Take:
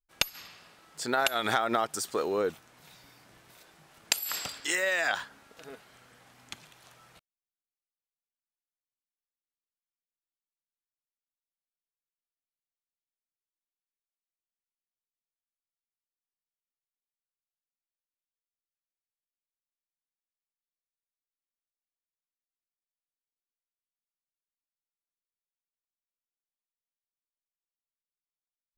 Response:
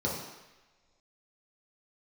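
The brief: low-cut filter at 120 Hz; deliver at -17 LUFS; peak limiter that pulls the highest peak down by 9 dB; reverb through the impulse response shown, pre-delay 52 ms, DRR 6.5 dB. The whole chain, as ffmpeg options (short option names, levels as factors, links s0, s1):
-filter_complex "[0:a]highpass=120,alimiter=limit=0.1:level=0:latency=1,asplit=2[s0][s1];[1:a]atrim=start_sample=2205,adelay=52[s2];[s1][s2]afir=irnorm=-1:irlink=0,volume=0.188[s3];[s0][s3]amix=inputs=2:normalize=0,volume=5.31"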